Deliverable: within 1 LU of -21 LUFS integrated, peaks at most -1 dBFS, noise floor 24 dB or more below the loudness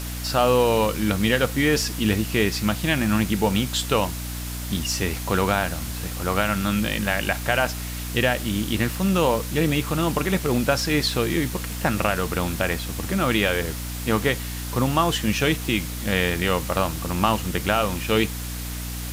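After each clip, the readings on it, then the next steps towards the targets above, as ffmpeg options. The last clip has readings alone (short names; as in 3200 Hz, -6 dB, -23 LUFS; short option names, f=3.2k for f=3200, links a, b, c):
hum 60 Hz; harmonics up to 300 Hz; hum level -29 dBFS; noise floor -31 dBFS; noise floor target -47 dBFS; loudness -23.0 LUFS; peak -5.5 dBFS; loudness target -21.0 LUFS
-> -af "bandreject=f=60:t=h:w=6,bandreject=f=120:t=h:w=6,bandreject=f=180:t=h:w=6,bandreject=f=240:t=h:w=6,bandreject=f=300:t=h:w=6"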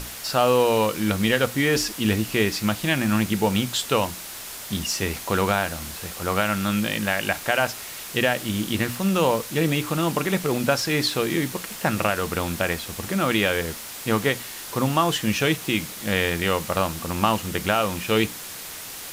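hum none; noise floor -37 dBFS; noise floor target -48 dBFS
-> -af "afftdn=nr=11:nf=-37"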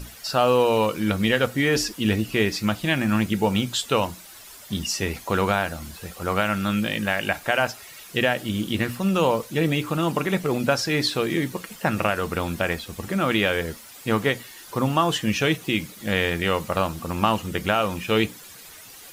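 noise floor -44 dBFS; noise floor target -48 dBFS
-> -af "afftdn=nr=6:nf=-44"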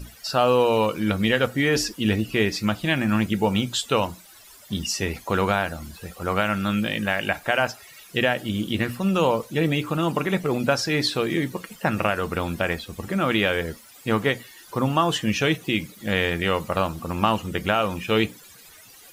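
noise floor -48 dBFS; loudness -24.0 LUFS; peak -5.5 dBFS; loudness target -21.0 LUFS
-> -af "volume=3dB"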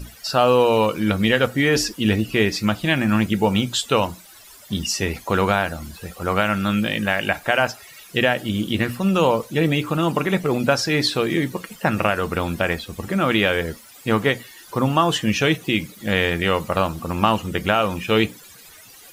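loudness -21.0 LUFS; peak -2.5 dBFS; noise floor -45 dBFS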